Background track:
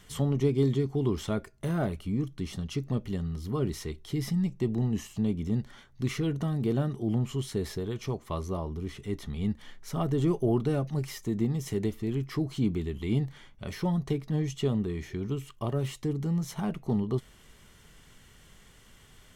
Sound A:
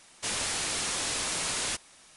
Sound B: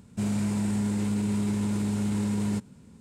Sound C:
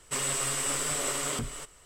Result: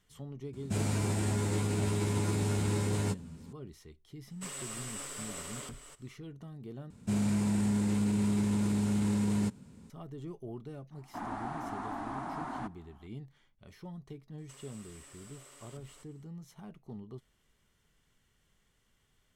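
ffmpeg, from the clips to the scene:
-filter_complex "[2:a]asplit=2[a][b];[3:a]asplit=2[c][d];[0:a]volume=-17dB[e];[a]asplit=2[f][g];[g]adelay=12,volume=-2dB[h];[f][h]amix=inputs=2:normalize=0[i];[1:a]firequalizer=gain_entry='entry(140,0);entry(270,14);entry(470,-13);entry(720,12);entry(1100,6);entry(2500,-19);entry(5200,-28)':delay=0.05:min_phase=1[j];[d]acompressor=threshold=-36dB:ratio=6:attack=3.2:release=140:knee=1:detection=peak[k];[e]asplit=2[l][m];[l]atrim=end=6.904[n];[b]atrim=end=3,asetpts=PTS-STARTPTS,volume=-2dB[o];[m]atrim=start=9.896[p];[i]atrim=end=3,asetpts=PTS-STARTPTS,volume=-0.5dB,afade=t=in:d=0.004:c=hsin,afade=t=out:st=2.996:d=0.004:c=hsin,adelay=530[q];[c]atrim=end=1.85,asetpts=PTS-STARTPTS,volume=-12dB,afade=t=in:d=0.004:c=hsin,afade=t=out:st=1.846:d=0.004:c=hsin,adelay=4300[r];[j]atrim=end=2.16,asetpts=PTS-STARTPTS,volume=-6dB,afade=t=in:d=0.004:c=hsin,afade=t=out:st=2.156:d=0.004:c=hsin,adelay=10910[s];[k]atrim=end=1.85,asetpts=PTS-STARTPTS,volume=-16dB,afade=t=in:d=0.004:c=hsin,afade=t=out:st=1.846:d=0.004:c=hsin,adelay=14380[t];[n][o]acrossfade=d=0.004:c1=hsin:c2=hsin[u];[u][p]acrossfade=d=0.004:c1=hsin:c2=hsin[v];[v][q][r][s][t]amix=inputs=5:normalize=0"

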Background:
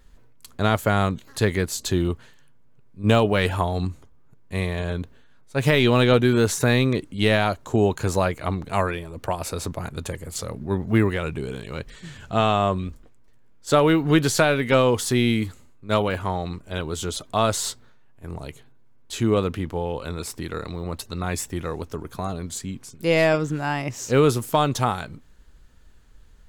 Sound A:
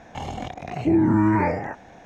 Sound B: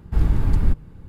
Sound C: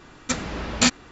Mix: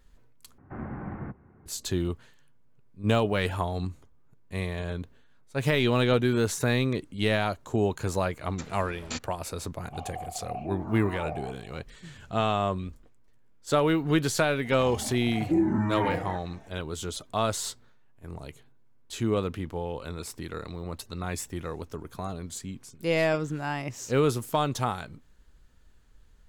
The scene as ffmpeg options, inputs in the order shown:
-filter_complex "[1:a]asplit=2[a][b];[0:a]volume=-6dB[c];[2:a]highpass=f=210:t=q:w=0.5412,highpass=f=210:t=q:w=1.307,lowpass=f=2.1k:t=q:w=0.5176,lowpass=f=2.1k:t=q:w=0.7071,lowpass=f=2.1k:t=q:w=1.932,afreqshift=-83[d];[a]asplit=3[e][f][g];[e]bandpass=f=730:t=q:w=8,volume=0dB[h];[f]bandpass=f=1.09k:t=q:w=8,volume=-6dB[i];[g]bandpass=f=2.44k:t=q:w=8,volume=-9dB[j];[h][i][j]amix=inputs=3:normalize=0[k];[b]asplit=2[l][m];[m]adelay=3.7,afreqshift=1.3[n];[l][n]amix=inputs=2:normalize=1[o];[c]asplit=2[p][q];[p]atrim=end=0.584[r];[d]atrim=end=1.08,asetpts=PTS-STARTPTS,volume=-3dB[s];[q]atrim=start=1.656[t];[3:a]atrim=end=1.11,asetpts=PTS-STARTPTS,volume=-17dB,afade=t=in:d=0.004:c=hsin,afade=t=out:st=1.106:d=0.004:c=hsin,adelay=8290[u];[k]atrim=end=2.05,asetpts=PTS-STARTPTS,volume=-0.5dB,afade=t=in:d=0.004:c=hsin,afade=t=out:st=2.046:d=0.004:c=hsin,adelay=431298S[v];[o]atrim=end=2.05,asetpts=PTS-STARTPTS,volume=-3.5dB,afade=t=in:d=0.004:c=hsin,afade=t=out:st=2.046:d=0.004:c=hsin,adelay=14640[w];[r][s]acrossfade=d=0.004:c1=hsin:c2=hsin[x];[x][t]acrossfade=d=0.004:c1=hsin:c2=hsin[y];[y][u][v][w]amix=inputs=4:normalize=0"

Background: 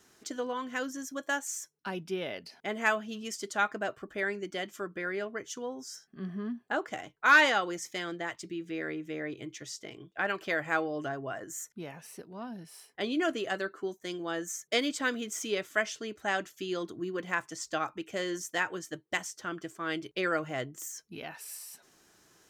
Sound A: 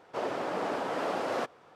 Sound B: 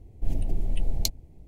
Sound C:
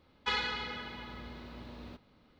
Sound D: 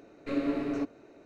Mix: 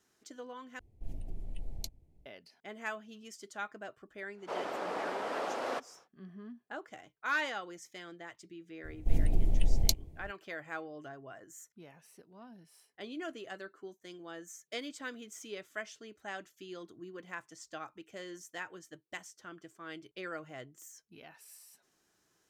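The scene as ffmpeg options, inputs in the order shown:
-filter_complex "[2:a]asplit=2[a][b];[0:a]volume=-11.5dB[c];[a]aresample=32000,aresample=44100[d];[1:a]equalizer=f=120:w=0.56:g=-10[e];[c]asplit=2[f][g];[f]atrim=end=0.794[h];[d]atrim=end=1.47,asetpts=PTS-STARTPTS,volume=-14.5dB[i];[g]atrim=start=2.256[j];[e]atrim=end=1.75,asetpts=PTS-STARTPTS,volume=-3dB,afade=t=in:d=0.1,afade=t=out:st=1.65:d=0.1,adelay=4340[k];[b]atrim=end=1.47,asetpts=PTS-STARTPTS,volume=-0.5dB,afade=t=in:d=0.004:c=hsin,afade=t=out:st=1.466:d=0.004:c=hsin,adelay=8840[l];[h][i]acrossfade=d=0.004:c1=hsin:c2=hsin[m];[m][j]acrossfade=d=0.004:c1=hsin:c2=hsin[n];[n][k][l]amix=inputs=3:normalize=0"

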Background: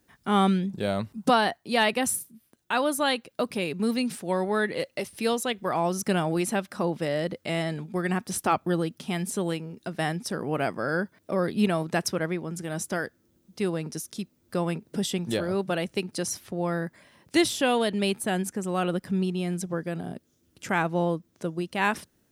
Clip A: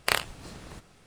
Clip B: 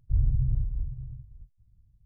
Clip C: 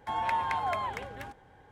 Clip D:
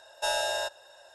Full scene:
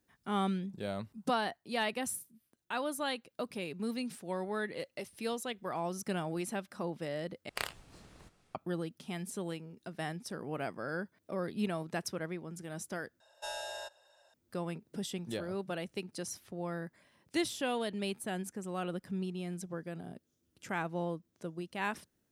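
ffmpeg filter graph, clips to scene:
-filter_complex "[0:a]volume=-10.5dB,asplit=3[a][b][c];[a]atrim=end=7.494[d];[1:a]atrim=end=1.06,asetpts=PTS-STARTPTS,volume=-12dB[e];[b]atrim=start=8.546:end=13.204[f];[4:a]atrim=end=1.14,asetpts=PTS-STARTPTS,volume=-12dB[g];[c]atrim=start=14.336[h];[d][e]acrossfade=d=0.004:c1=hsin:c2=hsin[i];[i][f]acrossfade=d=0.004:c1=hsin:c2=hsin[j];[j][g]acrossfade=d=0.004:c1=hsin:c2=hsin[k];[k][h]acrossfade=d=0.004:c1=hsin:c2=hsin"

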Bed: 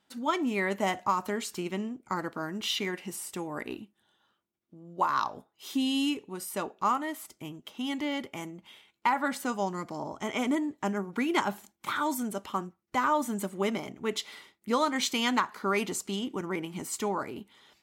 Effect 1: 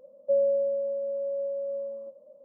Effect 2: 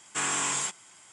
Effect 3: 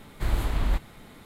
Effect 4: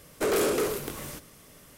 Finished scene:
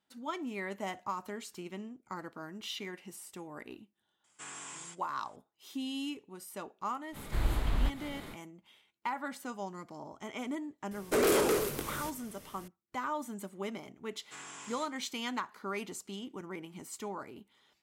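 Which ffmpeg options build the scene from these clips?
-filter_complex "[2:a]asplit=2[a][b];[0:a]volume=-9.5dB[c];[3:a]acompressor=mode=upward:threshold=-31dB:ratio=2.5:attack=3.2:release=140:knee=2.83:detection=peak[d];[4:a]acontrast=36[e];[b]equalizer=f=8.5k:t=o:w=0.23:g=-9.5[f];[a]atrim=end=1.12,asetpts=PTS-STARTPTS,volume=-17dB,afade=t=in:d=0.004:c=hsin,afade=t=out:st=1.116:d=0.004:c=hsin,adelay=4240[g];[d]atrim=end=1.25,asetpts=PTS-STARTPTS,volume=-4.5dB,afade=t=in:d=0.05,afade=t=out:st=1.2:d=0.05,adelay=7120[h];[e]atrim=end=1.77,asetpts=PTS-STARTPTS,volume=-7dB,afade=t=in:d=0.004:c=hsin,afade=t=out:st=1.766:d=0.004:c=hsin,adelay=10910[i];[f]atrim=end=1.12,asetpts=PTS-STARTPTS,volume=-17.5dB,afade=t=in:d=0.004:c=hsin,afade=t=out:st=1.116:d=0.004:c=hsin,adelay=14160[j];[c][g][h][i][j]amix=inputs=5:normalize=0"

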